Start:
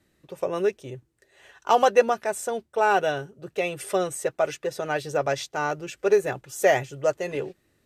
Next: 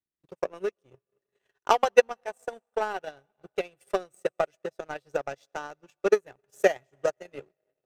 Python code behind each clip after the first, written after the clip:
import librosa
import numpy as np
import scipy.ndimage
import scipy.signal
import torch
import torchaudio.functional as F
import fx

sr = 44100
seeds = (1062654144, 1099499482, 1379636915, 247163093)

y = fx.rev_freeverb(x, sr, rt60_s=2.5, hf_ratio=0.85, predelay_ms=65, drr_db=19.0)
y = fx.transient(y, sr, attack_db=11, sustain_db=-8)
y = fx.power_curve(y, sr, exponent=1.4)
y = y * librosa.db_to_amplitude(-6.5)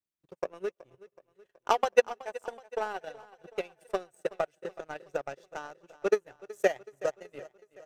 y = fx.echo_feedback(x, sr, ms=374, feedback_pct=56, wet_db=-19)
y = y * librosa.db_to_amplitude(-4.0)